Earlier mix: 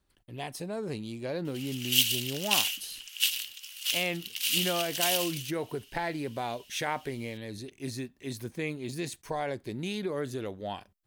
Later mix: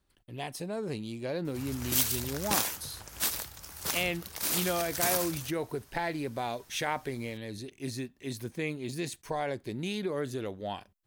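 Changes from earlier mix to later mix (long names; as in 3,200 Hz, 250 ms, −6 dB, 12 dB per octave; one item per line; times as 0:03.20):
background: remove high-pass with resonance 2,900 Hz, resonance Q 10
reverb: on, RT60 0.60 s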